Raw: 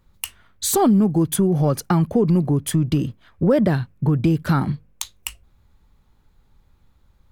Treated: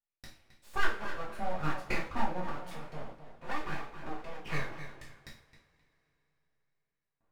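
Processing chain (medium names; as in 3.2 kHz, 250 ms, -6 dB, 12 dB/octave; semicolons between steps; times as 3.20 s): gate with hold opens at -44 dBFS; in parallel at -12 dB: integer overflow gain 24.5 dB; on the sum: wah-wah 1.2 Hz 530–1200 Hz, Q 3; tape echo 264 ms, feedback 29%, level -9 dB, low-pass 1.9 kHz; full-wave rectifier; two-slope reverb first 0.38 s, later 3.7 s, from -28 dB, DRR -5.5 dB; trim -7.5 dB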